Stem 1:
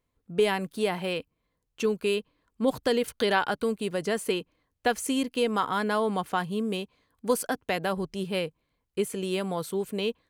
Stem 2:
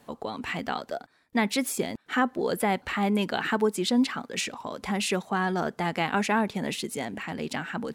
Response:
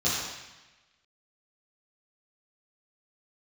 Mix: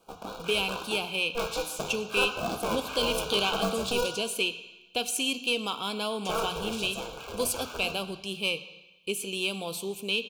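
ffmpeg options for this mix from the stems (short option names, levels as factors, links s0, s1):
-filter_complex "[0:a]highshelf=f=2000:t=q:w=3:g=7.5,asoftclip=type=tanh:threshold=0.251,adelay=100,volume=0.668,asplit=2[s0][s1];[s1]volume=0.075[s2];[1:a]aeval=exprs='val(0)*sgn(sin(2*PI*240*n/s))':c=same,volume=0.531,asplit=3[s3][s4][s5];[s3]atrim=end=4.07,asetpts=PTS-STARTPTS,afade=t=out:st=4.066:d=0.004:c=hsin[s6];[s4]atrim=start=4.07:end=6.25,asetpts=PTS-STARTPTS,volume=0[s7];[s5]atrim=start=6.25,asetpts=PTS-STARTPTS,afade=t=in:d=0.004:c=hsin[s8];[s6][s7][s8]concat=n=3:v=0:a=1,asplit=2[s9][s10];[s10]volume=0.188[s11];[2:a]atrim=start_sample=2205[s12];[s2][s11]amix=inputs=2:normalize=0[s13];[s13][s12]afir=irnorm=-1:irlink=0[s14];[s0][s9][s14]amix=inputs=3:normalize=0,asuperstop=centerf=1900:order=8:qfactor=2.9,lowshelf=f=420:g=-5.5"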